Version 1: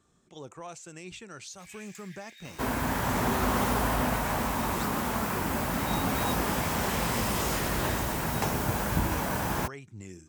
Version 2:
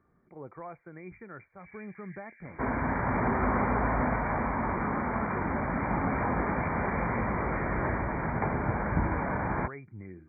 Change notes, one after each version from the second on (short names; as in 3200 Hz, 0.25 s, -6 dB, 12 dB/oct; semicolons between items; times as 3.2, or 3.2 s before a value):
master: add brick-wall FIR low-pass 2400 Hz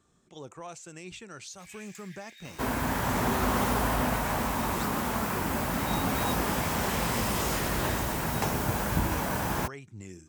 master: remove brick-wall FIR low-pass 2400 Hz